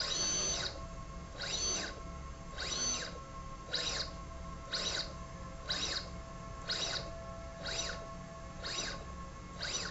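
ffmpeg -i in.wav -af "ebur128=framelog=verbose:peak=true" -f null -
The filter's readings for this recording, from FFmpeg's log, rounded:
Integrated loudness:
  I:         -38.1 LUFS
  Threshold: -48.1 LUFS
Loudness range:
  LRA:         3.2 LU
  Threshold: -58.4 LUFS
  LRA low:   -40.1 LUFS
  LRA high:  -36.9 LUFS
True peak:
  Peak:      -22.7 dBFS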